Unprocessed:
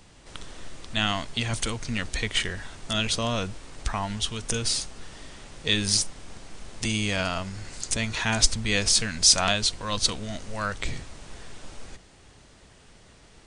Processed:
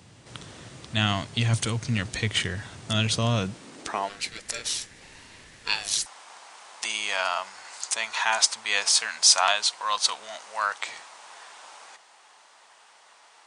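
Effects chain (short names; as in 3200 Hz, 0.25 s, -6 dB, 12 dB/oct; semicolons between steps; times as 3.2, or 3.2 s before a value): high-pass sweep 110 Hz -> 900 Hz, 3.36–4.4; 4.09–6.06 ring modulator 910 Hz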